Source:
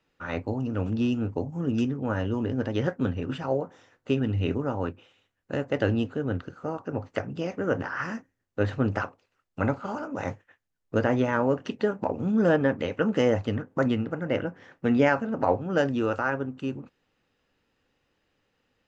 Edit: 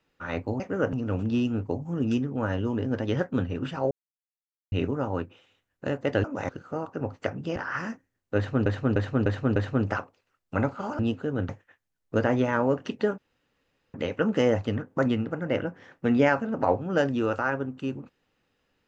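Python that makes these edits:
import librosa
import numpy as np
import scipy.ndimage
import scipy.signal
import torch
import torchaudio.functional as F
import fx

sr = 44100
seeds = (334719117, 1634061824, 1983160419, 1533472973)

y = fx.edit(x, sr, fx.silence(start_s=3.58, length_s=0.81),
    fx.swap(start_s=5.91, length_s=0.5, other_s=10.04, other_length_s=0.25),
    fx.move(start_s=7.48, length_s=0.33, to_s=0.6),
    fx.repeat(start_s=8.61, length_s=0.3, count=5),
    fx.room_tone_fill(start_s=11.98, length_s=0.76), tone=tone)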